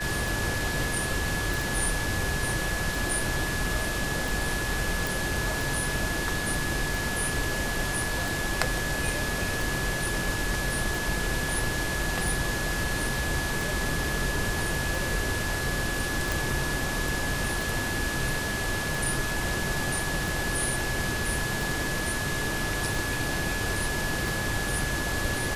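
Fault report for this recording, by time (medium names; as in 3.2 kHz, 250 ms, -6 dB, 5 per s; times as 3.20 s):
tick 45 rpm
whine 1.7 kHz -32 dBFS
1.54 s: pop
5.07 s: pop
16.32 s: pop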